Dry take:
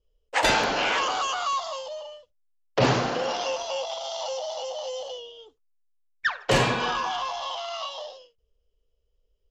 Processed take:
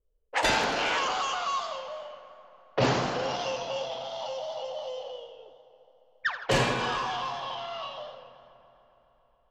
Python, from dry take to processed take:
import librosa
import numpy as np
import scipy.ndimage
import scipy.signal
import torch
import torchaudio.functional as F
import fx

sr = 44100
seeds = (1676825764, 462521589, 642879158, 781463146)

y = fx.echo_heads(x, sr, ms=139, heads='all three', feedback_pct=60, wet_db=-22)
y = fx.env_lowpass(y, sr, base_hz=1400.0, full_db=-20.0)
y = fx.echo_warbled(y, sr, ms=83, feedback_pct=63, rate_hz=2.8, cents=108, wet_db=-12.0)
y = y * librosa.db_to_amplitude(-3.5)